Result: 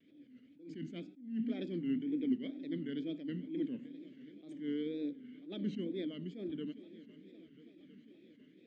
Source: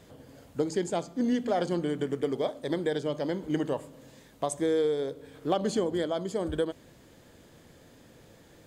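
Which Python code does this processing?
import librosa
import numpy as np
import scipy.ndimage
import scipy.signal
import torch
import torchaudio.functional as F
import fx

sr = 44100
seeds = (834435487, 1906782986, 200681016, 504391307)

p1 = scipy.signal.sosfilt(scipy.signal.butter(2, 91.0, 'highpass', fs=sr, output='sos'), x)
p2 = fx.dynamic_eq(p1, sr, hz=180.0, q=1.4, threshold_db=-45.0, ratio=4.0, max_db=7)
p3 = fx.vowel_filter(p2, sr, vowel='i')
p4 = p3 + fx.echo_swing(p3, sr, ms=1308, ratio=3, feedback_pct=43, wet_db=-19, dry=0)
p5 = fx.wow_flutter(p4, sr, seeds[0], rate_hz=2.1, depth_cents=150.0)
p6 = fx.air_absorb(p5, sr, metres=100.0)
p7 = fx.attack_slew(p6, sr, db_per_s=110.0)
y = F.gain(torch.from_numpy(p7), 3.0).numpy()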